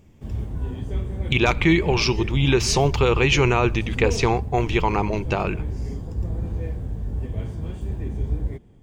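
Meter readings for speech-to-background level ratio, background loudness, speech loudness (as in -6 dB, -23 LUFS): 8.5 dB, -29.5 LUFS, -21.0 LUFS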